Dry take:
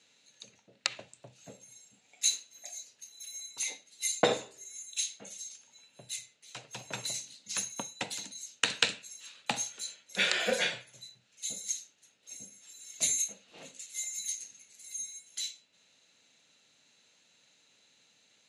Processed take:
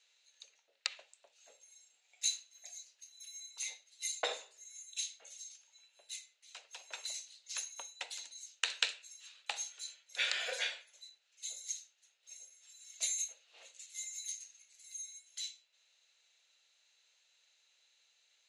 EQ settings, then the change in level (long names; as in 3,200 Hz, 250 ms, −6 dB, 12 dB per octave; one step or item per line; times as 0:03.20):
four-pole ladder high-pass 370 Hz, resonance 25%
first difference
head-to-tape spacing loss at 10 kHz 21 dB
+14.5 dB